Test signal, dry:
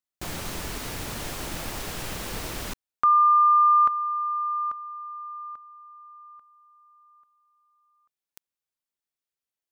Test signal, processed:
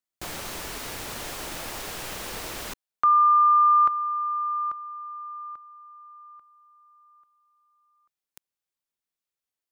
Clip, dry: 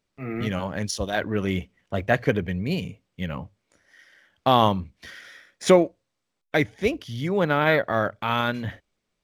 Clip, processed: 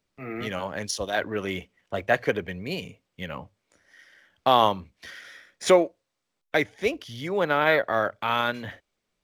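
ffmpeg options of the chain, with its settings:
ffmpeg -i in.wav -filter_complex "[0:a]acrossover=split=330|3000[link_01][link_02][link_03];[link_01]acompressor=threshold=-55dB:ratio=1.5:release=590:knee=2.83:detection=peak[link_04];[link_04][link_02][link_03]amix=inputs=3:normalize=0" out.wav

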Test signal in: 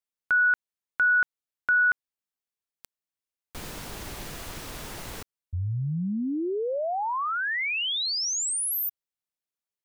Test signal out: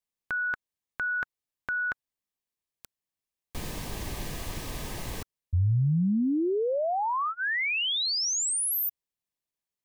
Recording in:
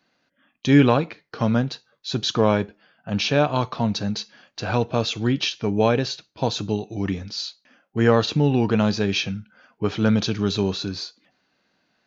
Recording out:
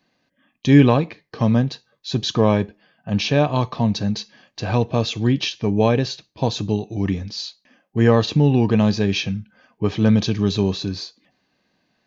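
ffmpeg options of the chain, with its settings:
ffmpeg -i in.wav -af "asuperstop=centerf=1400:order=4:qfactor=6.5,lowshelf=frequency=250:gain=6" out.wav

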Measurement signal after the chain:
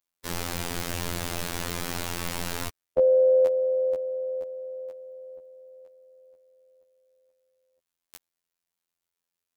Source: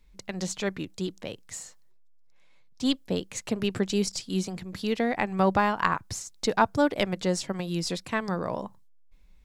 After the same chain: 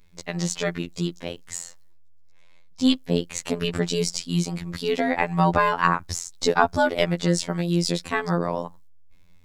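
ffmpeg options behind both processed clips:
ffmpeg -i in.wav -af "afftfilt=real='hypot(re,im)*cos(PI*b)':imag='0':win_size=2048:overlap=0.75,acontrast=46,volume=2.5dB" out.wav

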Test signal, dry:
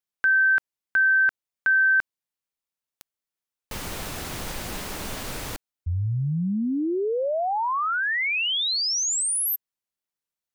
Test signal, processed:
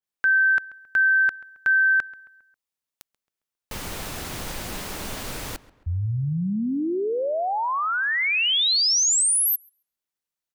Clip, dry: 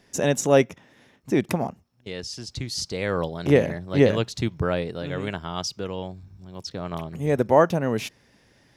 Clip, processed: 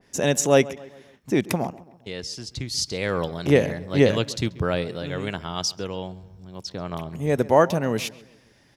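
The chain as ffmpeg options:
ffmpeg -i in.wav -filter_complex "[0:a]asplit=2[link_01][link_02];[link_02]adelay=135,lowpass=frequency=2800:poles=1,volume=-19dB,asplit=2[link_03][link_04];[link_04]adelay=135,lowpass=frequency=2800:poles=1,volume=0.48,asplit=2[link_05][link_06];[link_06]adelay=135,lowpass=frequency=2800:poles=1,volume=0.48,asplit=2[link_07][link_08];[link_08]adelay=135,lowpass=frequency=2800:poles=1,volume=0.48[link_09];[link_01][link_03][link_05][link_07][link_09]amix=inputs=5:normalize=0,adynamicequalizer=threshold=0.0158:dfrequency=2400:dqfactor=0.7:tfrequency=2400:tqfactor=0.7:attack=5:release=100:ratio=0.375:range=2.5:mode=boostabove:tftype=highshelf" out.wav

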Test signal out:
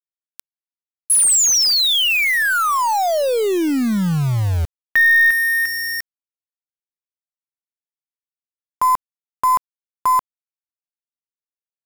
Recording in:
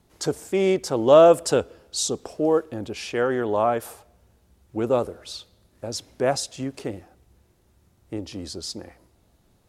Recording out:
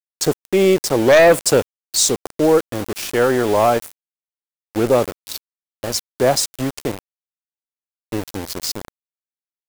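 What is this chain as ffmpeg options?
ffmpeg -i in.wav -af "aeval=exprs='0.794*(cos(1*acos(clip(val(0)/0.794,-1,1)))-cos(1*PI/2))+0.00562*(cos(2*acos(clip(val(0)/0.794,-1,1)))-cos(2*PI/2))+0.316*(cos(5*acos(clip(val(0)/0.794,-1,1)))-cos(5*PI/2))+0.0355*(cos(8*acos(clip(val(0)/0.794,-1,1)))-cos(8*PI/2))':channel_layout=same,aeval=exprs='val(0)*gte(abs(val(0)),0.0794)':channel_layout=same,highshelf=frequency=5800:gain=5.5,volume=-2dB" out.wav

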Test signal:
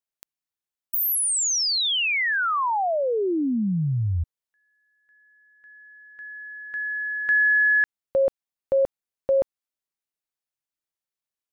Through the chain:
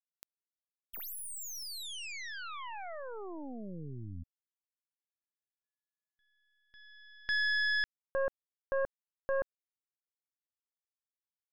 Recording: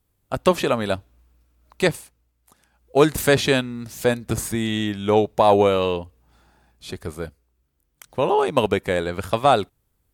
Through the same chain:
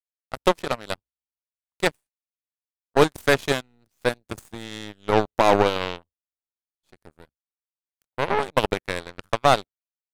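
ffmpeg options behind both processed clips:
ffmpeg -i in.wav -af "agate=range=-17dB:threshold=-45dB:ratio=16:release=102:detection=rms,aeval=exprs='0.708*(cos(1*acos(clip(val(0)/0.708,-1,1)))-cos(1*PI/2))+0.224*(cos(2*acos(clip(val(0)/0.708,-1,1)))-cos(2*PI/2))+0.1*(cos(7*acos(clip(val(0)/0.708,-1,1)))-cos(7*PI/2))':channel_layout=same,volume=-2dB" out.wav

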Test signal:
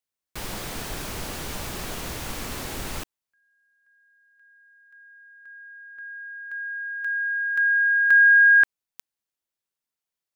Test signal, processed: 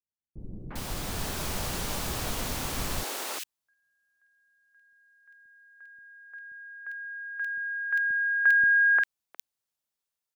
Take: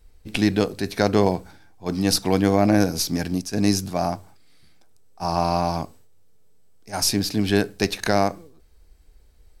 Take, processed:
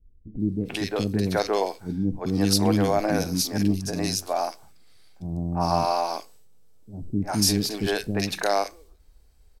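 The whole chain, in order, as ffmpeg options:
ffmpeg -i in.wav -filter_complex "[0:a]dynaudnorm=framelen=210:gausssize=7:maxgain=5dB,acrossover=split=350|2000[link_01][link_02][link_03];[link_02]adelay=350[link_04];[link_03]adelay=400[link_05];[link_01][link_04][link_05]amix=inputs=3:normalize=0,volume=-3.5dB" out.wav

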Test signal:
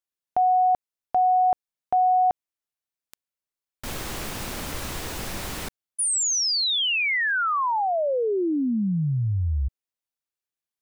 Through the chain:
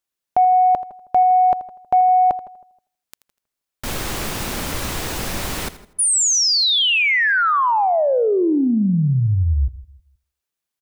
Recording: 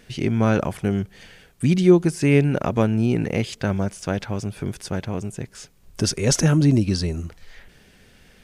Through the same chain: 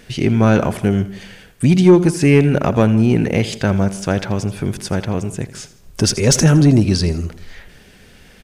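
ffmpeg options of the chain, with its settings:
ffmpeg -i in.wav -filter_complex "[0:a]asplit=2[link_01][link_02];[link_02]aecho=0:1:82|164|246:0.158|0.0555|0.0194[link_03];[link_01][link_03]amix=inputs=2:normalize=0,acontrast=74,asplit=2[link_04][link_05];[link_05]adelay=159,lowpass=frequency=1300:poles=1,volume=-18dB,asplit=2[link_06][link_07];[link_07]adelay=159,lowpass=frequency=1300:poles=1,volume=0.3,asplit=2[link_08][link_09];[link_09]adelay=159,lowpass=frequency=1300:poles=1,volume=0.3[link_10];[link_06][link_08][link_10]amix=inputs=3:normalize=0[link_11];[link_04][link_11]amix=inputs=2:normalize=0" out.wav

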